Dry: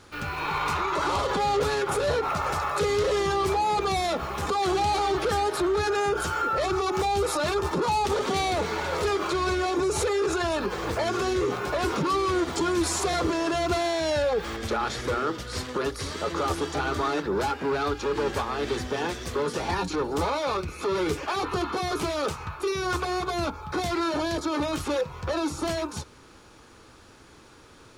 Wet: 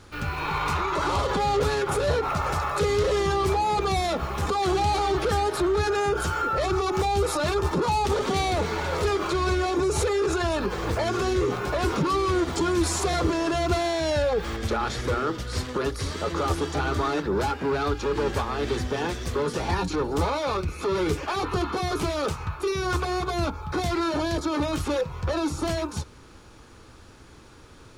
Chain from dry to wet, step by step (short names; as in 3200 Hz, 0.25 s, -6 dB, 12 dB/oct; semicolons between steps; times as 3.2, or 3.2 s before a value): low shelf 150 Hz +8.5 dB